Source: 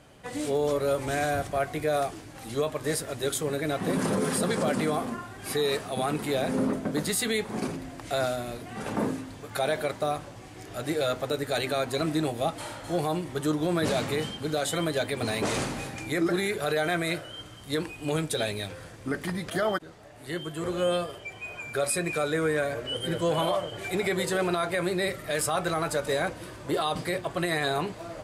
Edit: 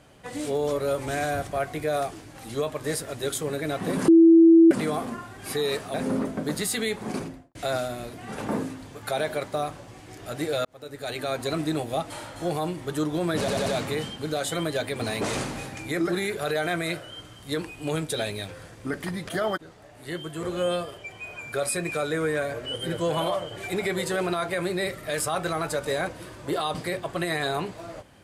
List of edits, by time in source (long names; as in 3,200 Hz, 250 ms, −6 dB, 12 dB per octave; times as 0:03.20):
0:04.08–0:04.71: beep over 330 Hz −10 dBFS
0:05.94–0:06.42: remove
0:07.69–0:08.03: fade out and dull
0:11.13–0:11.87: fade in
0:13.87: stutter 0.09 s, 4 plays